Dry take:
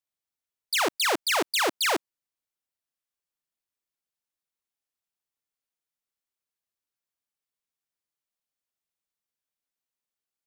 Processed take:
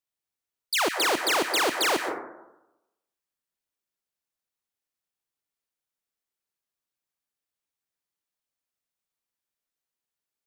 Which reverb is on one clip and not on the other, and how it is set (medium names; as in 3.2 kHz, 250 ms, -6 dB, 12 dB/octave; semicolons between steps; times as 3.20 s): plate-style reverb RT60 0.94 s, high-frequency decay 0.25×, pre-delay 110 ms, DRR 5.5 dB